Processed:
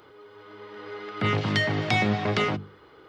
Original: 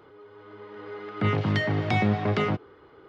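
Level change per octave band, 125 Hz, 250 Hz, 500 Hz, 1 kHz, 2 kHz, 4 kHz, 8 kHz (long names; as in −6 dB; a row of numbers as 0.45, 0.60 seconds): −2.0 dB, −1.0 dB, 0.0 dB, +1.0 dB, +3.5 dB, +6.5 dB, can't be measured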